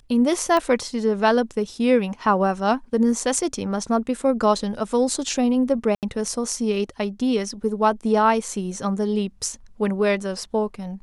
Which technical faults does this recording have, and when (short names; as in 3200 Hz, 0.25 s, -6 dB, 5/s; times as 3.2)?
0.57 pop -11 dBFS
5.95–6.03 gap 78 ms